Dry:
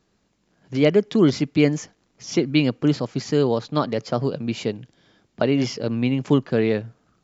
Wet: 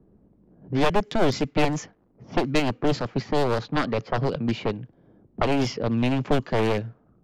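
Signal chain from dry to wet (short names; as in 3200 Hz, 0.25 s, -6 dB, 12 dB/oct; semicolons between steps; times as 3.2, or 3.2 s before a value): one-sided fold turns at -20.5 dBFS; low-pass opened by the level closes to 440 Hz, open at -17.5 dBFS; three-band squash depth 40%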